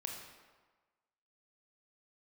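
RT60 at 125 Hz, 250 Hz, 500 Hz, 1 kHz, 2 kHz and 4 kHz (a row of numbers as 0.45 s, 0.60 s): 1.1 s, 1.2 s, 1.3 s, 1.4 s, 1.2 s, 0.90 s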